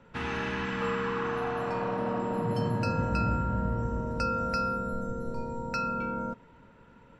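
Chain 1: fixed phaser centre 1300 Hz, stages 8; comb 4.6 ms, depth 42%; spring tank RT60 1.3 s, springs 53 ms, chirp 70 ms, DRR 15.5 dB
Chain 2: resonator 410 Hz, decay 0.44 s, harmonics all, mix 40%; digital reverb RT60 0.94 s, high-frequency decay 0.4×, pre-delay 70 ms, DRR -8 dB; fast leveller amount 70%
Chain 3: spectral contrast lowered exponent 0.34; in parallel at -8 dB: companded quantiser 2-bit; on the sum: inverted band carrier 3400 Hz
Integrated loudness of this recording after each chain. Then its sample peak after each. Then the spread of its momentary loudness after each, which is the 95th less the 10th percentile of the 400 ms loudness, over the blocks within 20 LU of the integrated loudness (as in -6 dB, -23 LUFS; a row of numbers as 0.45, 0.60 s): -32.5, -22.0, -24.5 LUFS; -18.5, -9.0, -14.0 dBFS; 7, 5, 4 LU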